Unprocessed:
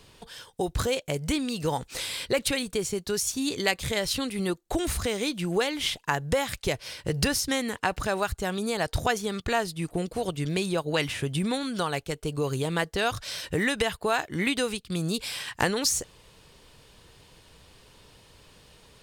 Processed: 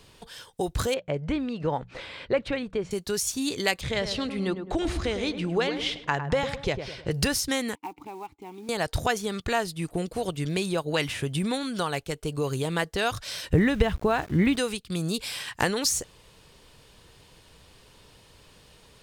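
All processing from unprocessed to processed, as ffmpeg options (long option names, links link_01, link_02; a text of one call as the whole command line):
ffmpeg -i in.wav -filter_complex "[0:a]asettb=1/sr,asplit=3[link_01][link_02][link_03];[link_01]atrim=end=0.944[link_04];[link_02]atrim=start=0.94:end=2.91,asetpts=PTS-STARTPTS,afade=type=in:duration=0.004:curve=qsin,afade=type=out:start_time=1.966:duration=0.004:curve=qsin,lowpass=2100,equalizer=frequency=590:width_type=o:width=0.25:gain=3.5,bandreject=frequency=60:width_type=h:width=6,bandreject=frequency=120:width_type=h:width=6,bandreject=frequency=180:width_type=h:width=6[link_05];[link_03]atrim=start=2.906[link_06];[link_04][link_05]acrossfade=duration=0.004:curve1=hsin:curve2=qsin[link_07];[link_07][link_06]acrossfade=duration=0.004:curve1=qsin:curve2=hsin,asettb=1/sr,asplit=3[link_08][link_09][link_10];[link_08]atrim=end=3.814[link_11];[link_09]atrim=start=3.81:end=7.11,asetpts=PTS-STARTPTS,afade=type=in:duration=0.004:curve=qsin,afade=type=out:start_time=3.296:duration=0.004:curve=qsin,lowpass=4600,asplit=2[link_12][link_13];[link_13]adelay=105,lowpass=frequency=1200:poles=1,volume=-7.5dB,asplit=2[link_14][link_15];[link_15]adelay=105,lowpass=frequency=1200:poles=1,volume=0.48,asplit=2[link_16][link_17];[link_17]adelay=105,lowpass=frequency=1200:poles=1,volume=0.48,asplit=2[link_18][link_19];[link_19]adelay=105,lowpass=frequency=1200:poles=1,volume=0.48,asplit=2[link_20][link_21];[link_21]adelay=105,lowpass=frequency=1200:poles=1,volume=0.48,asplit=2[link_22][link_23];[link_23]adelay=105,lowpass=frequency=1200:poles=1,volume=0.48[link_24];[link_12][link_14][link_16][link_18][link_20][link_22][link_24]amix=inputs=7:normalize=0,atrim=end_sample=145530[link_25];[link_10]atrim=start=7.106[link_26];[link_11][link_25]acrossfade=duration=0.004:curve1=hsin:curve2=qsin[link_27];[link_27][link_26]acrossfade=duration=0.004:curve1=qsin:curve2=hsin,asettb=1/sr,asplit=3[link_28][link_29][link_30];[link_28]atrim=end=7.754[link_31];[link_29]atrim=start=7.75:end=8.69,asetpts=PTS-STARTPTS,afade=type=in:duration=0.004:curve=qsin,afade=type=out:start_time=0.936:duration=0.004:curve=qsin,asplit=3[link_32][link_33][link_34];[link_32]bandpass=frequency=300:width_type=q:width=8,volume=0dB[link_35];[link_33]bandpass=frequency=870:width_type=q:width=8,volume=-6dB[link_36];[link_34]bandpass=frequency=2240:width_type=q:width=8,volume=-9dB[link_37];[link_35][link_36][link_37]amix=inputs=3:normalize=0,adynamicequalizer=threshold=0.002:dfrequency=550:dqfactor=0.81:tfrequency=550:tqfactor=0.81:attack=5:release=100:ratio=0.375:range=3.5:mode=boostabove:tftype=bell,acrusher=bits=5:mode=log:mix=0:aa=0.000001[link_38];[link_30]atrim=start=8.686[link_39];[link_31][link_38]acrossfade=duration=0.004:curve1=hsin:curve2=qsin[link_40];[link_40][link_39]acrossfade=duration=0.004:curve1=qsin:curve2=hsin,asettb=1/sr,asplit=3[link_41][link_42][link_43];[link_41]atrim=end=13.534[link_44];[link_42]atrim=start=13.53:end=14.56,asetpts=PTS-STARTPTS,afade=type=in:duration=0.004:curve=qsin,afade=type=out:start_time=1.026:duration=0.004:curve=qsin,aemphasis=mode=reproduction:type=riaa,aeval=exprs='val(0)+0.00562*(sin(2*PI*60*n/s)+sin(2*PI*2*60*n/s)/2+sin(2*PI*3*60*n/s)/3+sin(2*PI*4*60*n/s)/4+sin(2*PI*5*60*n/s)/5)':channel_layout=same,aeval=exprs='val(0)*gte(abs(val(0)),0.00841)':channel_layout=same[link_45];[link_43]atrim=start=14.556[link_46];[link_44][link_45]acrossfade=duration=0.004:curve1=hsin:curve2=qsin[link_47];[link_47][link_46]acrossfade=duration=0.004:curve1=qsin:curve2=hsin" out.wav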